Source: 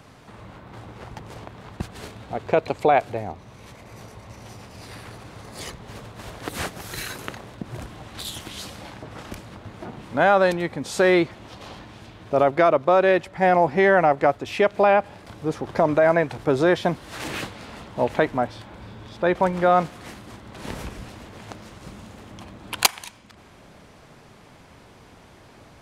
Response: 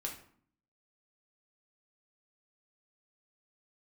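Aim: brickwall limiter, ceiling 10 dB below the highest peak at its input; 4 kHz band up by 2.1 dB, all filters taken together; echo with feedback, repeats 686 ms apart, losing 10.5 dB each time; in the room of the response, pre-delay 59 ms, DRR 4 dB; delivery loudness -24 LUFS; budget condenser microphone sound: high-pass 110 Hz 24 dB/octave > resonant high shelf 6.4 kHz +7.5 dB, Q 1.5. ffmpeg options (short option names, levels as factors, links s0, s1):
-filter_complex "[0:a]equalizer=f=4000:t=o:g=4.5,alimiter=limit=0.376:level=0:latency=1,aecho=1:1:686|1372|2058:0.299|0.0896|0.0269,asplit=2[s0][s1];[1:a]atrim=start_sample=2205,adelay=59[s2];[s1][s2]afir=irnorm=-1:irlink=0,volume=0.631[s3];[s0][s3]amix=inputs=2:normalize=0,highpass=f=110:w=0.5412,highpass=f=110:w=1.3066,highshelf=f=6400:t=q:w=1.5:g=7.5,volume=0.794"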